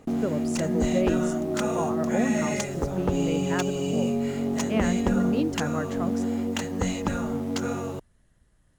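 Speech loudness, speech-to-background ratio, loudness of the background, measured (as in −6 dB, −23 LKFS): −31.5 LKFS, −4.0 dB, −27.5 LKFS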